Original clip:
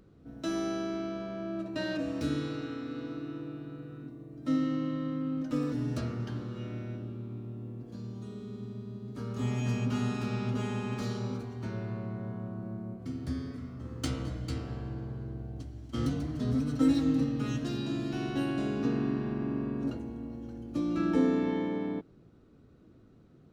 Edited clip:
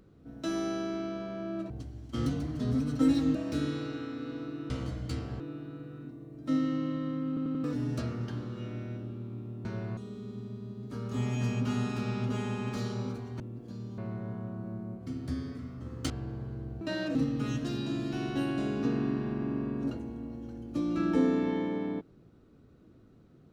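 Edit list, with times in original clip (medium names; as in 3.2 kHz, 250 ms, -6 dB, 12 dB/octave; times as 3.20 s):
1.70–2.04 s: swap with 15.50–17.15 s
5.27 s: stutter in place 0.09 s, 4 plays
7.64–8.22 s: swap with 11.65–11.97 s
14.09–14.79 s: move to 3.39 s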